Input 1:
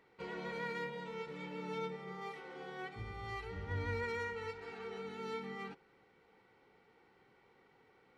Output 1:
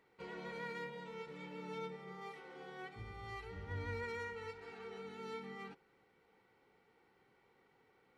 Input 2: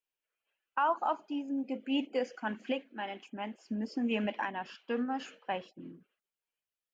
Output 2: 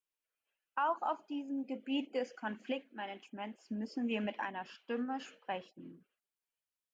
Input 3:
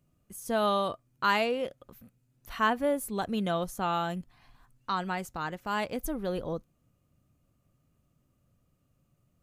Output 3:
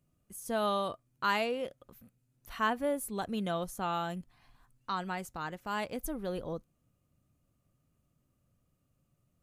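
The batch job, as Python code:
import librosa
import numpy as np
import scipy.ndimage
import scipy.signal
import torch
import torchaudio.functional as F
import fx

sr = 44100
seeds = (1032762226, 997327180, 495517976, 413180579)

y = fx.peak_eq(x, sr, hz=10000.0, db=3.0, octaves=0.84)
y = F.gain(torch.from_numpy(y), -4.0).numpy()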